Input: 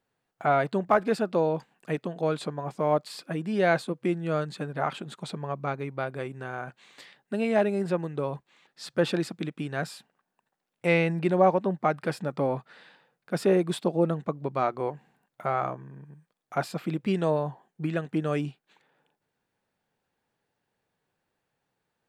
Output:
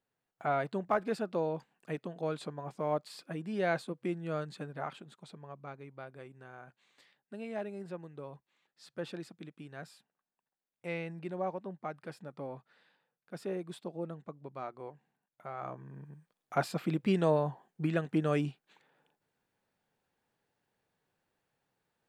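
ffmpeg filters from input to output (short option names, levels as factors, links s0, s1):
-af "volume=1.78,afade=t=out:st=4.6:d=0.56:silence=0.446684,afade=t=in:st=15.57:d=0.42:silence=0.223872"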